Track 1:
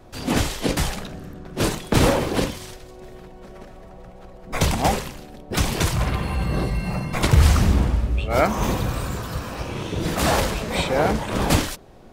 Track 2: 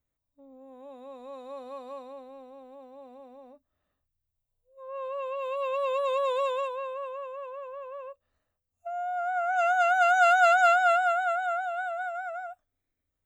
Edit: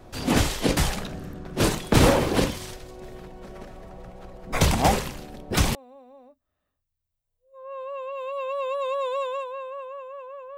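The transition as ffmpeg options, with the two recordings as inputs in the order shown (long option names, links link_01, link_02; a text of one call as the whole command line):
ffmpeg -i cue0.wav -i cue1.wav -filter_complex "[0:a]apad=whole_dur=10.57,atrim=end=10.57,atrim=end=5.752[link_01];[1:a]atrim=start=2.988:end=7.81[link_02];[link_01][link_02]acrossfade=duration=0.004:curve1=hsin:curve2=hsin" out.wav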